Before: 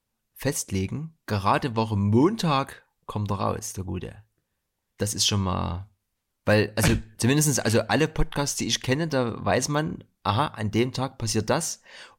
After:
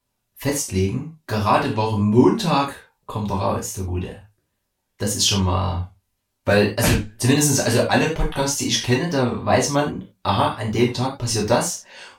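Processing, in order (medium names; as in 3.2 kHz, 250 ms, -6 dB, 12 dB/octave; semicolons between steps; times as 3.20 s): gated-style reverb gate 120 ms falling, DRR -3 dB; wow and flutter 59 cents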